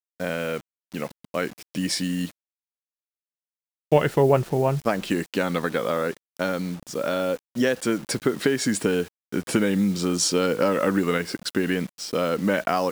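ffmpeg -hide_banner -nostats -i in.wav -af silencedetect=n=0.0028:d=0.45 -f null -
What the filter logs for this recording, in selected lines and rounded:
silence_start: 2.31
silence_end: 3.92 | silence_duration: 1.60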